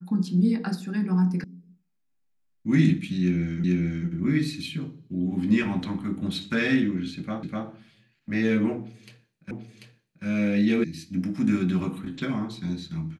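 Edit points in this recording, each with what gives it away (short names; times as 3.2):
1.44 sound cut off
3.64 repeat of the last 0.44 s
7.43 repeat of the last 0.25 s
9.51 repeat of the last 0.74 s
10.84 sound cut off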